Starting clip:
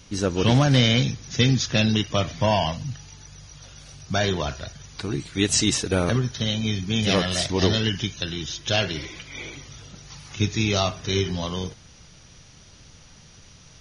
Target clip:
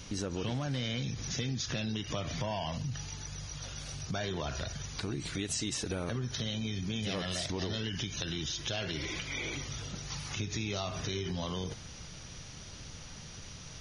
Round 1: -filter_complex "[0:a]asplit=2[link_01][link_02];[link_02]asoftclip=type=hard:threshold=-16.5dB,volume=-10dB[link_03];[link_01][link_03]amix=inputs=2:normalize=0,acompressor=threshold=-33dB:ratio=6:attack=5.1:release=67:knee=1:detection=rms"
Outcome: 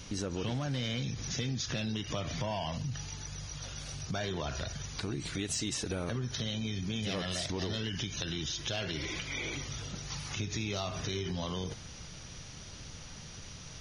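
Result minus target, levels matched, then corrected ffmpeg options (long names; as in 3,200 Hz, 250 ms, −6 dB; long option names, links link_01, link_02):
hard clipping: distortion +21 dB
-filter_complex "[0:a]asplit=2[link_01][link_02];[link_02]asoftclip=type=hard:threshold=-9dB,volume=-10dB[link_03];[link_01][link_03]amix=inputs=2:normalize=0,acompressor=threshold=-33dB:ratio=6:attack=5.1:release=67:knee=1:detection=rms"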